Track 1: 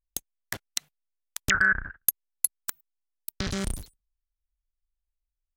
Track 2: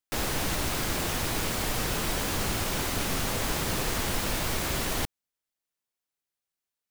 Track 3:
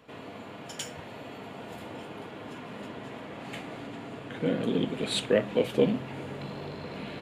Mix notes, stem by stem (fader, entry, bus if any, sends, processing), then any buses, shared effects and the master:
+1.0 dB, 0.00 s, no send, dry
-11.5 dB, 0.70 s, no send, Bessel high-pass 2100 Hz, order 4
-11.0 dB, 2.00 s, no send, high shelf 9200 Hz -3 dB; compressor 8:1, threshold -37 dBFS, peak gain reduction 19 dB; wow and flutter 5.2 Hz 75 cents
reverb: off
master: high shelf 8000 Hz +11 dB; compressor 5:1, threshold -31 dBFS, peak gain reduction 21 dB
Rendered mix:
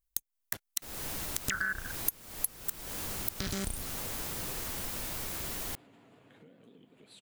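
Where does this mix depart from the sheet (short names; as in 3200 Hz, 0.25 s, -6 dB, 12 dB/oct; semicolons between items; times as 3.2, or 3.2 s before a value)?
stem 2: missing Bessel high-pass 2100 Hz, order 4; stem 3 -11.0 dB -> -18.0 dB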